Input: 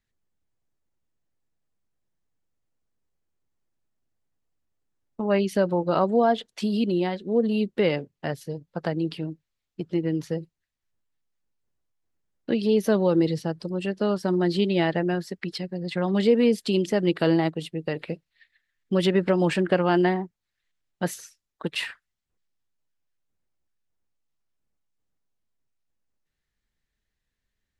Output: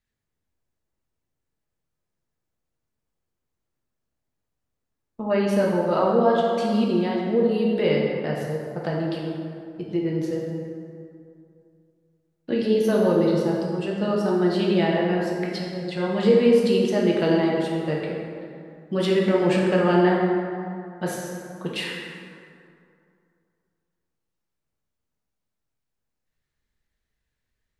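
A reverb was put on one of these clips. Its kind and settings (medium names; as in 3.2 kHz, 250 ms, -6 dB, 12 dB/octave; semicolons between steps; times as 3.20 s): plate-style reverb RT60 2.5 s, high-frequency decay 0.5×, DRR -3.5 dB; trim -3 dB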